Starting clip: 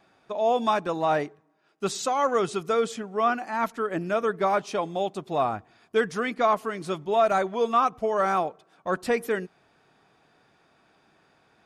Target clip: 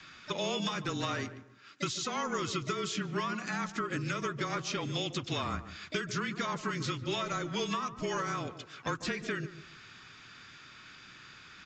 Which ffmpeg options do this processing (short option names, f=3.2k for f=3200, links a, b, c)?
-filter_complex "[0:a]firequalizer=gain_entry='entry(170,0);entry(730,-16);entry(1300,5);entry(2800,9)':delay=0.05:min_phase=1,afreqshift=-26,acompressor=threshold=-29dB:ratio=10,asplit=3[a][b][c];[b]asetrate=37084,aresample=44100,atempo=1.18921,volume=-10dB[d];[c]asetrate=66075,aresample=44100,atempo=0.66742,volume=-16dB[e];[a][d][e]amix=inputs=3:normalize=0,acrossover=split=680|5600[f][g][h];[f]acompressor=threshold=-41dB:ratio=4[i];[g]acompressor=threshold=-45dB:ratio=4[j];[h]acompressor=threshold=-52dB:ratio=4[k];[i][j][k]amix=inputs=3:normalize=0,asplit=2[l][m];[m]adelay=147,lowpass=f=980:p=1,volume=-11dB,asplit=2[n][o];[o]adelay=147,lowpass=f=980:p=1,volume=0.28,asplit=2[p][q];[q]adelay=147,lowpass=f=980:p=1,volume=0.28[r];[n][p][r]amix=inputs=3:normalize=0[s];[l][s]amix=inputs=2:normalize=0,aresample=16000,aresample=44100,volume=7dB"